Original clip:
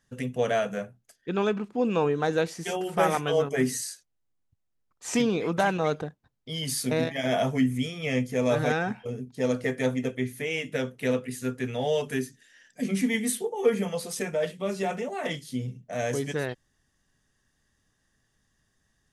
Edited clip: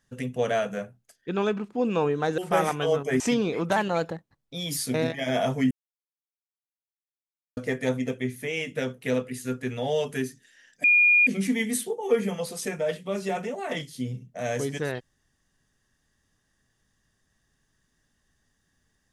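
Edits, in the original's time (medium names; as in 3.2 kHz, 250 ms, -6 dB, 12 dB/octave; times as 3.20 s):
2.38–2.84 s: delete
3.66–5.08 s: delete
5.64–6.74 s: speed 109%
7.68–9.54 s: mute
12.81 s: add tone 2.43 kHz -15 dBFS 0.43 s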